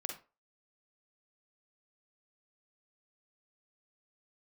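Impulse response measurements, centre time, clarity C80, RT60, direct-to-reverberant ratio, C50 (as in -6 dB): 24 ms, 13.0 dB, 0.30 s, 2.0 dB, 4.5 dB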